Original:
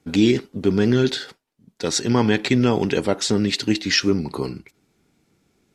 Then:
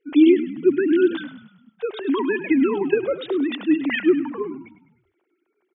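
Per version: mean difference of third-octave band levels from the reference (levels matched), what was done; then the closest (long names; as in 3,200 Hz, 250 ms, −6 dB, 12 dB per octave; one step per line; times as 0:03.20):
12.5 dB: three sine waves on the formant tracks
on a send: echo with shifted repeats 102 ms, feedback 48%, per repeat −36 Hz, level −13 dB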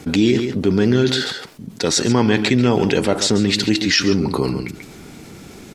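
4.5 dB: on a send: single-tap delay 138 ms −13 dB
on the sum: envelope flattener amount 50%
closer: second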